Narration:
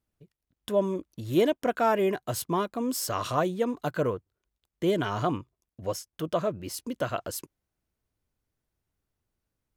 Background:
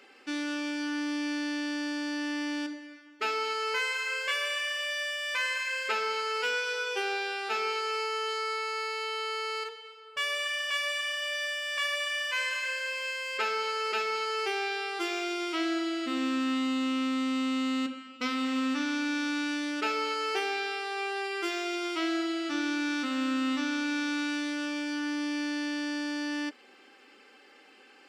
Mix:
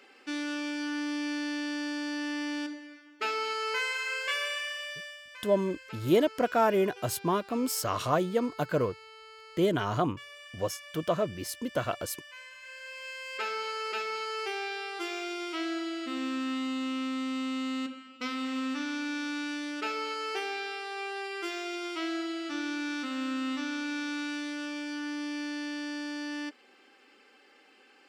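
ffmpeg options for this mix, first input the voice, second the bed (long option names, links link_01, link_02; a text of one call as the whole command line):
ffmpeg -i stem1.wav -i stem2.wav -filter_complex "[0:a]adelay=4750,volume=-0.5dB[link_01];[1:a]volume=12.5dB,afade=type=out:start_time=4.42:duration=0.85:silence=0.158489,afade=type=in:start_time=12.58:duration=0.9:silence=0.211349[link_02];[link_01][link_02]amix=inputs=2:normalize=0" out.wav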